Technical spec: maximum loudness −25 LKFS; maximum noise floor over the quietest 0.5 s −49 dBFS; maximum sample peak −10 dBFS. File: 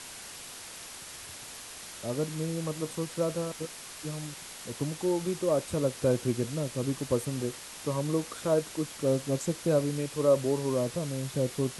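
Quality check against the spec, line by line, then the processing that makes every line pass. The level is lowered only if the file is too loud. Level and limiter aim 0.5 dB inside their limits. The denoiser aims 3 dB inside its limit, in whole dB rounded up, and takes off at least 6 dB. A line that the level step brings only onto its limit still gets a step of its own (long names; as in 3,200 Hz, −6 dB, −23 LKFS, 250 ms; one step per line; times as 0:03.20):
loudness −31.0 LKFS: in spec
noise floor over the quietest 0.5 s −44 dBFS: out of spec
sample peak −13.0 dBFS: in spec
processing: broadband denoise 8 dB, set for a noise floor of −44 dBFS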